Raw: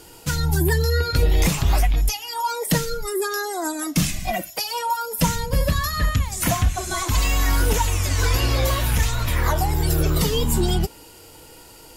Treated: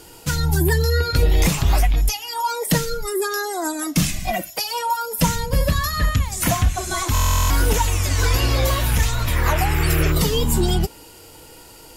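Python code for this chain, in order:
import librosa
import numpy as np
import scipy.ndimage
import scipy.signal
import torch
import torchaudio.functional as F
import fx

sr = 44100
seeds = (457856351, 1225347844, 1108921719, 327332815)

y = fx.dmg_noise_band(x, sr, seeds[0], low_hz=1100.0, high_hz=2800.0, level_db=-31.0, at=(9.45, 10.11), fade=0.02)
y = fx.buffer_glitch(y, sr, at_s=(7.13,), block=1024, repeats=15)
y = y * librosa.db_to_amplitude(1.5)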